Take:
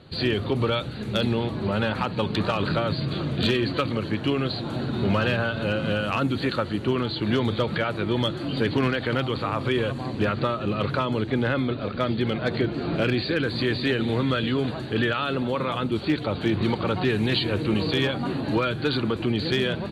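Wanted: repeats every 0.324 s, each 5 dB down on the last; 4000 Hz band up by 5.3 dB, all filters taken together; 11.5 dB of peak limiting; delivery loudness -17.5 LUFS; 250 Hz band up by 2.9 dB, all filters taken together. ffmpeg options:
-af "equalizer=f=250:t=o:g=3.5,equalizer=f=4k:t=o:g=6.5,alimiter=limit=-19.5dB:level=0:latency=1,aecho=1:1:324|648|972|1296|1620|1944|2268:0.562|0.315|0.176|0.0988|0.0553|0.031|0.0173,volume=9dB"

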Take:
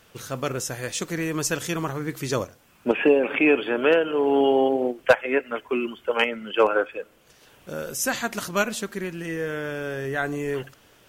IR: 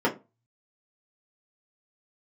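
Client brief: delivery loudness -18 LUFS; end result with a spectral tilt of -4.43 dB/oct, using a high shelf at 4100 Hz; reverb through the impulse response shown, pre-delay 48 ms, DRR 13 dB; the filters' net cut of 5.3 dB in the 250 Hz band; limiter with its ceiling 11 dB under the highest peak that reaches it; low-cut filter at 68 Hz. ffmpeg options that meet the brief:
-filter_complex "[0:a]highpass=68,equalizer=f=250:t=o:g=-7,highshelf=f=4.1k:g=-8,alimiter=limit=-17dB:level=0:latency=1,asplit=2[a][b];[1:a]atrim=start_sample=2205,adelay=48[c];[b][c]afir=irnorm=-1:irlink=0,volume=-27.5dB[d];[a][d]amix=inputs=2:normalize=0,volume=11dB"

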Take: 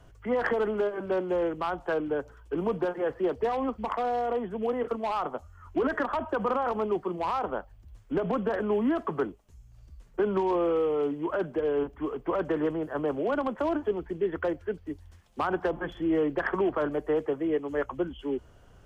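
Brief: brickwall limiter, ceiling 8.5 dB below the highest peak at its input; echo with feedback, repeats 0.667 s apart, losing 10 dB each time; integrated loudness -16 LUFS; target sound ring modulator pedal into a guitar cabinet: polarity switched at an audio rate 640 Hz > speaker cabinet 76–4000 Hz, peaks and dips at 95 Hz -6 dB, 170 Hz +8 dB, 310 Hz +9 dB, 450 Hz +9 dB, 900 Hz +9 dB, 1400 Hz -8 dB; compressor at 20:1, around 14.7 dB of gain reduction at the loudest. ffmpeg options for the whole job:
-af "acompressor=threshold=-37dB:ratio=20,alimiter=level_in=10.5dB:limit=-24dB:level=0:latency=1,volume=-10.5dB,aecho=1:1:667|1334|2001|2668:0.316|0.101|0.0324|0.0104,aeval=exprs='val(0)*sgn(sin(2*PI*640*n/s))':c=same,highpass=76,equalizer=f=95:t=q:w=4:g=-6,equalizer=f=170:t=q:w=4:g=8,equalizer=f=310:t=q:w=4:g=9,equalizer=f=450:t=q:w=4:g=9,equalizer=f=900:t=q:w=4:g=9,equalizer=f=1.4k:t=q:w=4:g=-8,lowpass=f=4k:w=0.5412,lowpass=f=4k:w=1.3066,volume=23dB"

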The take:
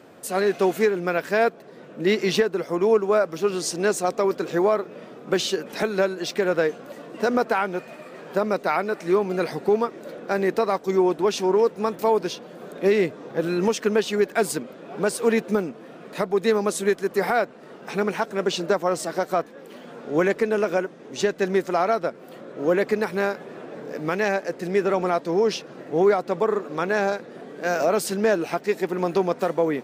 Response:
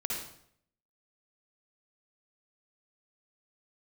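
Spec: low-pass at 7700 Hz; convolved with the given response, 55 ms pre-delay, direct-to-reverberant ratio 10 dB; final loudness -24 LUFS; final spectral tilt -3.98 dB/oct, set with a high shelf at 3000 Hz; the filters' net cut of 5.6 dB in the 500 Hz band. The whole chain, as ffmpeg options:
-filter_complex "[0:a]lowpass=7.7k,equalizer=f=500:t=o:g=-7.5,highshelf=f=3k:g=4,asplit=2[a][b];[1:a]atrim=start_sample=2205,adelay=55[c];[b][c]afir=irnorm=-1:irlink=0,volume=-14dB[d];[a][d]amix=inputs=2:normalize=0,volume=2.5dB"

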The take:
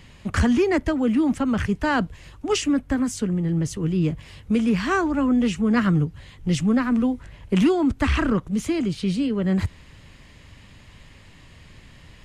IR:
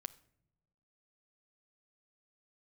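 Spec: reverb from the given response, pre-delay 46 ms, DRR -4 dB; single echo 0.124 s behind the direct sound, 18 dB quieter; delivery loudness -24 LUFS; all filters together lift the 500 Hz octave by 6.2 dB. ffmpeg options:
-filter_complex "[0:a]equalizer=f=500:t=o:g=8.5,aecho=1:1:124:0.126,asplit=2[a][b];[1:a]atrim=start_sample=2205,adelay=46[c];[b][c]afir=irnorm=-1:irlink=0,volume=8dB[d];[a][d]amix=inputs=2:normalize=0,volume=-9.5dB"

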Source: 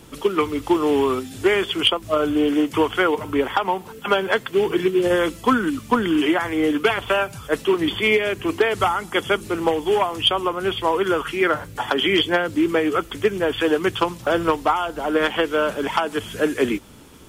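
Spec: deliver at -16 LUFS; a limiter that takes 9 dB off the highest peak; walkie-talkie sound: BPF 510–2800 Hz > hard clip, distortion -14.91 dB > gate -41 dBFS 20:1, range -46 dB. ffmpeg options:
-af "alimiter=limit=-13.5dB:level=0:latency=1,highpass=510,lowpass=2.8k,asoftclip=type=hard:threshold=-21dB,agate=range=-46dB:threshold=-41dB:ratio=20,volume=12dB"

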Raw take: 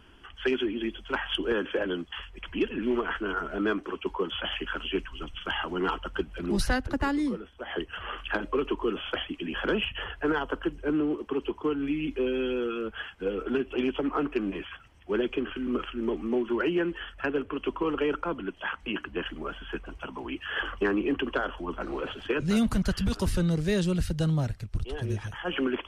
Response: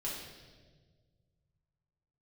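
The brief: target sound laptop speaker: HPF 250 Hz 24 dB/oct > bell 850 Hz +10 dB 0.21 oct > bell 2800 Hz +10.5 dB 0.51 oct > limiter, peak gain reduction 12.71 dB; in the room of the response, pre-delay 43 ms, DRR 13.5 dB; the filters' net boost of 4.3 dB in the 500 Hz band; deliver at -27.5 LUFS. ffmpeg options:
-filter_complex "[0:a]equalizer=f=500:t=o:g=5.5,asplit=2[a][b];[1:a]atrim=start_sample=2205,adelay=43[c];[b][c]afir=irnorm=-1:irlink=0,volume=-15.5dB[d];[a][d]amix=inputs=2:normalize=0,highpass=f=250:w=0.5412,highpass=f=250:w=1.3066,equalizer=f=850:t=o:w=0.21:g=10,equalizer=f=2.8k:t=o:w=0.51:g=10.5,volume=4dB,alimiter=limit=-18dB:level=0:latency=1"

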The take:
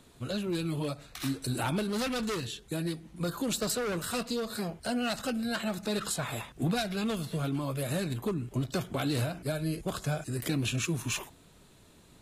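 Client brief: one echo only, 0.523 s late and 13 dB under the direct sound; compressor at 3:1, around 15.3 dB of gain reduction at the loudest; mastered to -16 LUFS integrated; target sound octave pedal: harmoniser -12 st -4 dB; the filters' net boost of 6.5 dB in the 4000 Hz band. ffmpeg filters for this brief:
-filter_complex "[0:a]equalizer=f=4k:t=o:g=7.5,acompressor=threshold=-47dB:ratio=3,aecho=1:1:523:0.224,asplit=2[a][b];[b]asetrate=22050,aresample=44100,atempo=2,volume=-4dB[c];[a][c]amix=inputs=2:normalize=0,volume=27.5dB"

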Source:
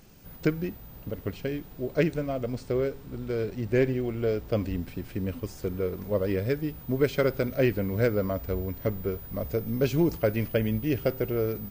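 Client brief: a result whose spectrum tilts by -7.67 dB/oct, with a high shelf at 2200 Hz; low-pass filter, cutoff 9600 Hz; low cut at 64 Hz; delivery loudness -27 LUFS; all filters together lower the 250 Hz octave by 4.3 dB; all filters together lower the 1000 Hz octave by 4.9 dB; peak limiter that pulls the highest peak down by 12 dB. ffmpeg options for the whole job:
-af "highpass=64,lowpass=9.6k,equalizer=f=250:t=o:g=-5.5,equalizer=f=1k:t=o:g=-6,highshelf=f=2.2k:g=-5.5,volume=9.5dB,alimiter=limit=-16.5dB:level=0:latency=1"

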